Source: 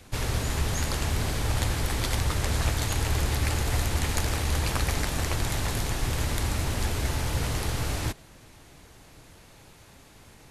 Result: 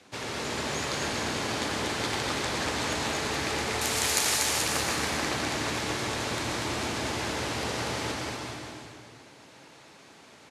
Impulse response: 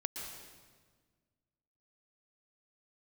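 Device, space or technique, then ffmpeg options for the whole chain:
supermarket ceiling speaker: -filter_complex "[0:a]asettb=1/sr,asplit=3[a][b][c];[a]atrim=end=3.814[d];[b]atrim=start=3.81:end=4.38,asetpts=PTS-STARTPTS,afade=t=in:d=0.004:c=qsin,afade=t=out:st=0.566:d=0.004:c=qsin,aemphasis=mode=production:type=riaa[e];[c]atrim=start=4.376[f];[d][e]acrossfade=d=0.004:c1=hsin:c2=qsin[g];[g][f]acrossfade=d=0.004:c1=qsin:c2=hsin,highpass=230,lowpass=6.9k,aecho=1:1:240|432|585.6|708.5|806.8:0.631|0.398|0.251|0.158|0.1[h];[1:a]atrim=start_sample=2205[i];[h][i]afir=irnorm=-1:irlink=0"

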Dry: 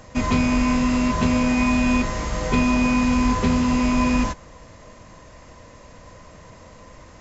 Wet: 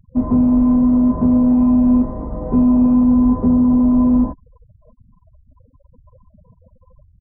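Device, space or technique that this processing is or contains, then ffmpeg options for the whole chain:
under water: -filter_complex "[0:a]lowpass=5k,asettb=1/sr,asplit=3[a][b][c];[a]atrim=end=0.564[d];[b]atrim=start=0.56:end=1.36,asetpts=PTS-STARTPTS,afade=t=in:d=0.004:c=qsin,afade=t=out:st=0.796:d=0.004:c=qsin,highshelf=f=2.7k:g=4[e];[c]atrim=start=1.356[f];[d][e]acrossfade=d=0.004:c1=hsin:c2=qsin[g];[g][f]acrossfade=d=0.004:c1=qsin:c2=hsin,afftfilt=real='re*gte(hypot(re,im),0.0316)':imag='im*gte(hypot(re,im),0.0316)':win_size=1024:overlap=0.75,lowpass=f=890:w=0.5412,lowpass=f=890:w=1.3066,equalizer=f=260:t=o:w=0.39:g=9"

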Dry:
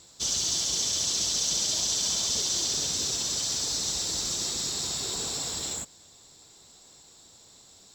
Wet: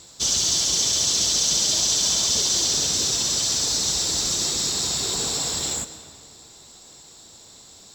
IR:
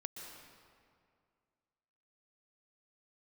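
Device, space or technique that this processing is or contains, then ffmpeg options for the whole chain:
saturated reverb return: -filter_complex "[0:a]asplit=2[a][b];[1:a]atrim=start_sample=2205[c];[b][c]afir=irnorm=-1:irlink=0,asoftclip=type=tanh:threshold=-24.5dB,volume=-2.5dB[d];[a][d]amix=inputs=2:normalize=0,volume=3.5dB"

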